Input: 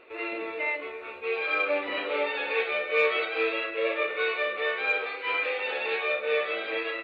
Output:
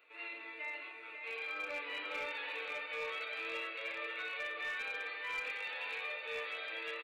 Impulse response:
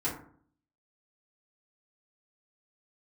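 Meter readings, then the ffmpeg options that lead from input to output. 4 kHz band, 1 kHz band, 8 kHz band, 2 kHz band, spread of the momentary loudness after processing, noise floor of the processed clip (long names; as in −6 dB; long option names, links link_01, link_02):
−9.0 dB, −12.5 dB, can't be measured, −10.5 dB, 5 LU, −50 dBFS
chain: -filter_complex "[0:a]aresample=22050,aresample=44100,bass=frequency=250:gain=8,treble=frequency=4000:gain=-4,acrossover=split=270|980[link_01][link_02][link_03];[link_03]alimiter=level_in=1dB:limit=-24dB:level=0:latency=1:release=62,volume=-1dB[link_04];[link_01][link_02][link_04]amix=inputs=3:normalize=0,aderivative,aecho=1:1:545|1090|1635|2180:0.473|0.166|0.058|0.0203,asplit=2[link_05][link_06];[1:a]atrim=start_sample=2205,lowpass=2500[link_07];[link_06][link_07]afir=irnorm=-1:irlink=0,volume=-8.5dB[link_08];[link_05][link_08]amix=inputs=2:normalize=0,aeval=exprs='clip(val(0),-1,0.0188)':channel_layout=same"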